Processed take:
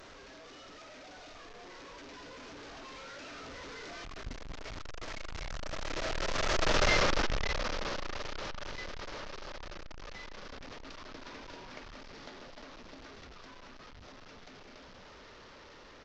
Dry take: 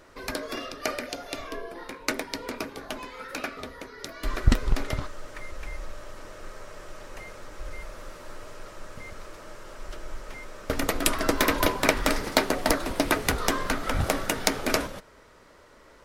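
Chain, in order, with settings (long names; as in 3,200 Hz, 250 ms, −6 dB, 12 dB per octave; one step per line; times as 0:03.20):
linear delta modulator 32 kbit/s, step −14 dBFS
source passing by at 0:06.88, 16 m/s, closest 5 metres
far-end echo of a speakerphone 90 ms, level −19 dB
level −4.5 dB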